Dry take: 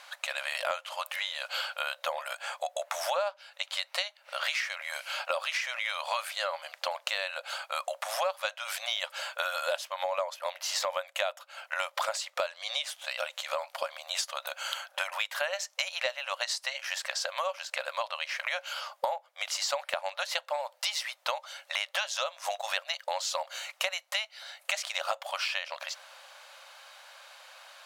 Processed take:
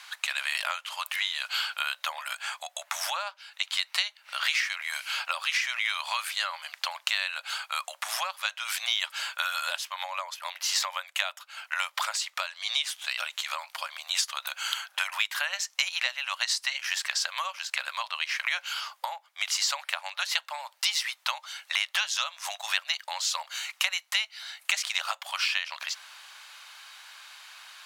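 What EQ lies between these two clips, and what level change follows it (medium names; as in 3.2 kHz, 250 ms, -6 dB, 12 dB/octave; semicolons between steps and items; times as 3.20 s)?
high-pass 1 kHz 24 dB/octave; peaking EQ 1.3 kHz -3 dB; +5.0 dB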